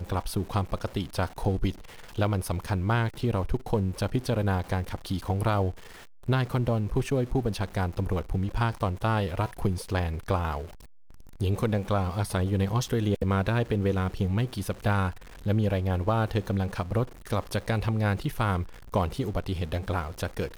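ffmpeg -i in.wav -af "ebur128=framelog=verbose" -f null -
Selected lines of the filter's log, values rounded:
Integrated loudness:
  I:         -28.7 LUFS
  Threshold: -38.9 LUFS
Loudness range:
  LRA:         2.2 LU
  Threshold: -48.7 LUFS
  LRA low:   -29.7 LUFS
  LRA high:  -27.5 LUFS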